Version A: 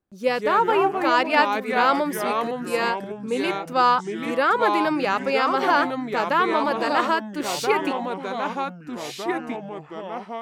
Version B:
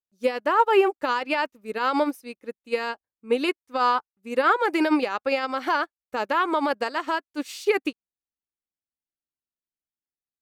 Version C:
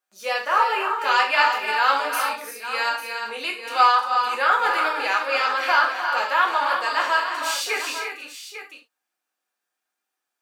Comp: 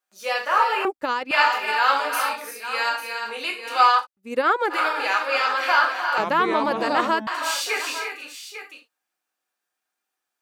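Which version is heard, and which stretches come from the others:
C
0.85–1.31 s: from B
4.02–4.74 s: from B, crossfade 0.10 s
6.18–7.27 s: from A

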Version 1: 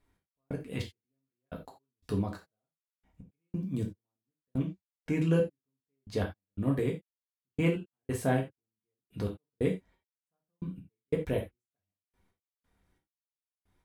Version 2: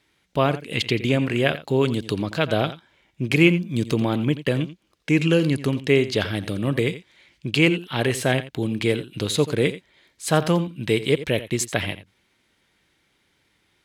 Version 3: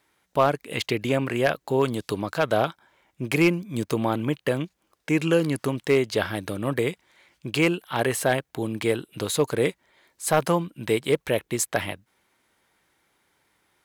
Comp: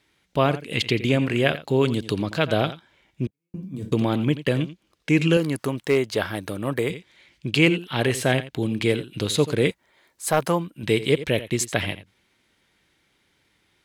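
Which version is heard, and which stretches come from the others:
2
3.27–3.92 s: from 1
5.37–6.90 s: from 3
9.71–10.83 s: from 3

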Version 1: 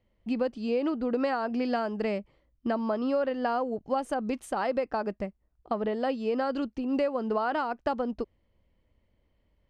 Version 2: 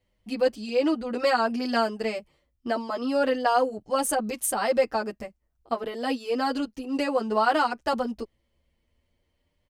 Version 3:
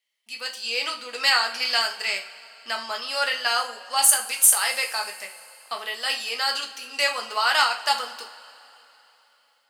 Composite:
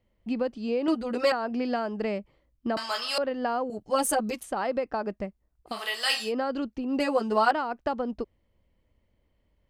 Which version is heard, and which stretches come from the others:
1
0.88–1.32 s: from 2
2.77–3.18 s: from 3
3.70–4.43 s: from 2
5.74–6.25 s: from 3, crossfade 0.16 s
7.00–7.51 s: from 2

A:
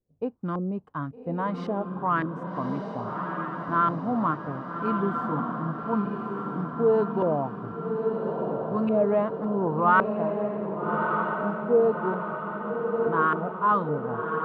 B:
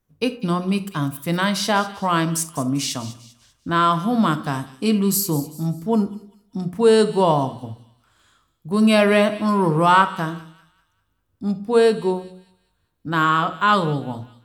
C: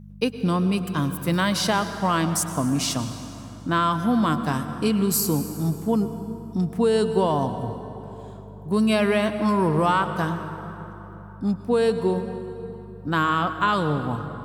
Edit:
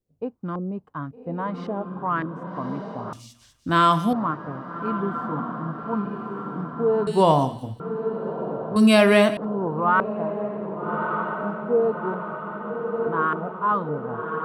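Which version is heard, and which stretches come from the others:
A
3.13–4.13 s: from B
7.07–7.80 s: from B
8.76–9.37 s: from B
not used: C

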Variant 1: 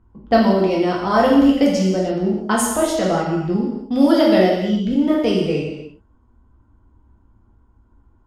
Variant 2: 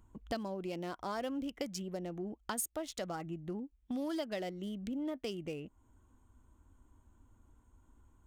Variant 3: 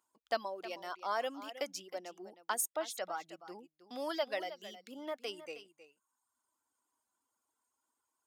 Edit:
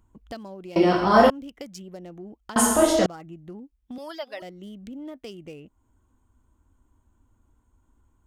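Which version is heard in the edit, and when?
2
0.76–1.30 s: from 1
2.56–3.06 s: from 1
3.98–4.42 s: from 3

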